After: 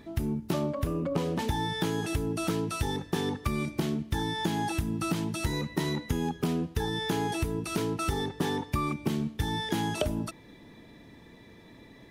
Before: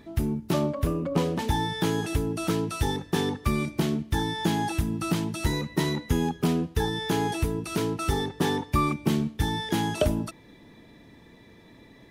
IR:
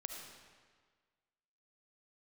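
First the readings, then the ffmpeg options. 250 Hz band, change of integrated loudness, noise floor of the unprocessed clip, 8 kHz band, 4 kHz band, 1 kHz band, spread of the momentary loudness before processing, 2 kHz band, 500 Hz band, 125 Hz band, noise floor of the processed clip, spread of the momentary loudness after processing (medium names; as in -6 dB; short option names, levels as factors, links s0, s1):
-3.5 dB, -3.5 dB, -53 dBFS, -3.0 dB, -2.5 dB, -3.5 dB, 3 LU, -2.5 dB, -3.5 dB, -3.5 dB, -53 dBFS, 2 LU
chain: -af "acompressor=threshold=0.0562:ratio=6"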